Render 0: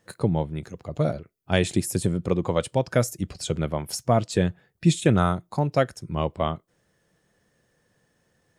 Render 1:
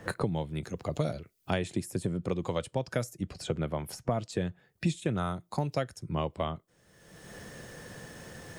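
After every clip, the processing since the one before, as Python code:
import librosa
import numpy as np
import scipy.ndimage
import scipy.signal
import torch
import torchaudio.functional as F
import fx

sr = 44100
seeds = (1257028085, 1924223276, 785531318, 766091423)

y = fx.band_squash(x, sr, depth_pct=100)
y = y * librosa.db_to_amplitude(-8.5)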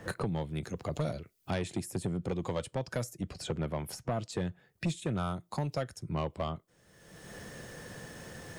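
y = 10.0 ** (-25.0 / 20.0) * np.tanh(x / 10.0 ** (-25.0 / 20.0))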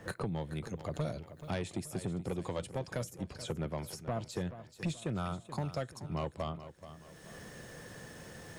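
y = fx.echo_feedback(x, sr, ms=430, feedback_pct=42, wet_db=-13)
y = y * librosa.db_to_amplitude(-3.0)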